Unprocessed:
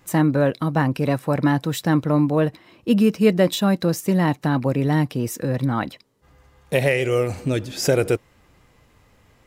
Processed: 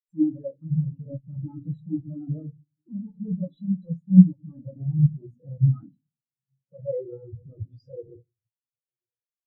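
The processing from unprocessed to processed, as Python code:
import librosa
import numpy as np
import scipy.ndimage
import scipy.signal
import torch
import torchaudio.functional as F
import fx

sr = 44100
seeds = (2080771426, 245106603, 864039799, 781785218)

p1 = fx.fuzz(x, sr, gain_db=38.0, gate_db=-43.0)
p2 = p1 + fx.echo_diffused(p1, sr, ms=1008, feedback_pct=49, wet_db=-15.5, dry=0)
p3 = fx.room_shoebox(p2, sr, seeds[0], volume_m3=120.0, walls='mixed', distance_m=0.69)
p4 = fx.spectral_expand(p3, sr, expansion=4.0)
y = p4 * librosa.db_to_amplitude(-1.5)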